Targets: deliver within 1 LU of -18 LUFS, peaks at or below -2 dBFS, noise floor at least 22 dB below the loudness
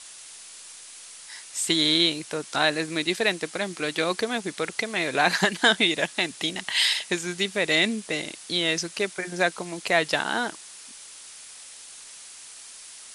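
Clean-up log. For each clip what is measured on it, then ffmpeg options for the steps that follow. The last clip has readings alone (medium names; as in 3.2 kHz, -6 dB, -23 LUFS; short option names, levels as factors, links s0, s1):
noise floor -45 dBFS; noise floor target -47 dBFS; loudness -24.5 LUFS; peak level -4.0 dBFS; loudness target -18.0 LUFS
-> -af "afftdn=nr=6:nf=-45"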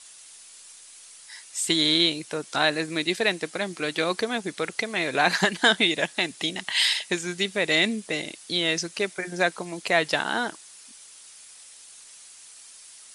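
noise floor -48 dBFS; loudness -24.5 LUFS; peak level -4.0 dBFS; loudness target -18.0 LUFS
-> -af "volume=2.11,alimiter=limit=0.794:level=0:latency=1"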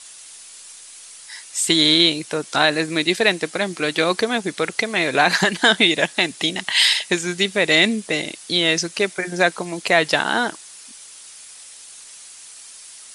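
loudness -18.5 LUFS; peak level -2.0 dBFS; noise floor -42 dBFS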